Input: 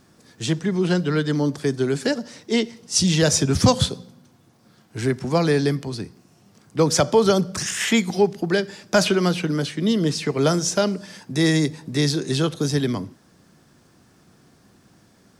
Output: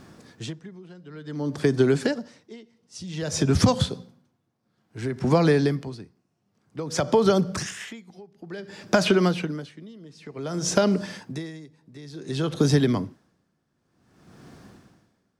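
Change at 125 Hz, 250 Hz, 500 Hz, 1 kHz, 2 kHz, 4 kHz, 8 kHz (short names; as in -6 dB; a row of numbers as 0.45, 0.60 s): -3.5, -4.0, -3.5, -3.5, -5.5, -7.5, -8.5 dB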